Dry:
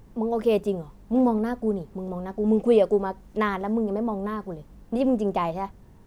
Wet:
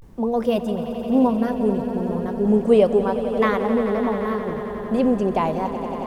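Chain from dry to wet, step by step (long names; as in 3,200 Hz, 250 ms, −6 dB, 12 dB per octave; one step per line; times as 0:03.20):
0:00.45–0:01.54: notch comb filter 420 Hz
echo that builds up and dies away 90 ms, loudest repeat 5, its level −14 dB
pitch vibrato 0.33 Hz 65 cents
level +3.5 dB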